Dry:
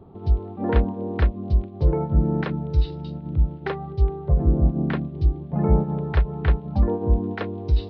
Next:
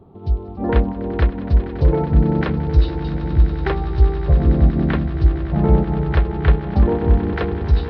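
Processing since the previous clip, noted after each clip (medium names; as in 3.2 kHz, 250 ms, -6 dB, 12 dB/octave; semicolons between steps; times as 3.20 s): level rider gain up to 6 dB; echo with a slow build-up 94 ms, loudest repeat 8, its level -16.5 dB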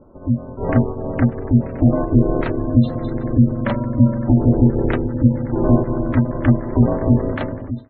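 fade out at the end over 0.60 s; ring modulator 180 Hz; spectral gate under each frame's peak -30 dB strong; trim +2.5 dB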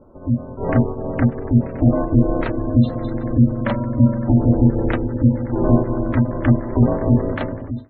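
hum notches 50/100/150/200/250/300/350/400 Hz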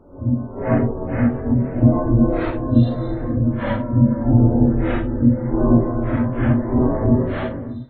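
phase randomisation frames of 200 ms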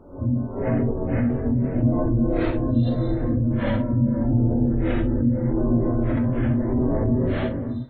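dynamic bell 1.1 kHz, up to -7 dB, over -37 dBFS, Q 0.85; in parallel at +1.5 dB: compressor with a negative ratio -22 dBFS, ratio -1; on the sum: trim -7.5 dB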